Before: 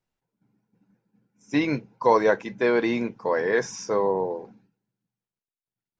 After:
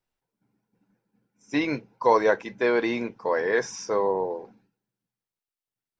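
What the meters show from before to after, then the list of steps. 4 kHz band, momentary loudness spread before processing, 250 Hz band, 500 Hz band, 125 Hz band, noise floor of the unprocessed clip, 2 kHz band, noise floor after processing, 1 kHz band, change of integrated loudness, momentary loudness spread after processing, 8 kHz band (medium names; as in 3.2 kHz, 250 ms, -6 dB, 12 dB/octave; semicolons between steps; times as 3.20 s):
0.0 dB, 7 LU, -2.5 dB, -1.0 dB, -5.5 dB, under -85 dBFS, 0.0 dB, under -85 dBFS, 0.0 dB, -1.0 dB, 9 LU, no reading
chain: peaking EQ 160 Hz -6 dB 1.5 oct; band-stop 6.7 kHz, Q 16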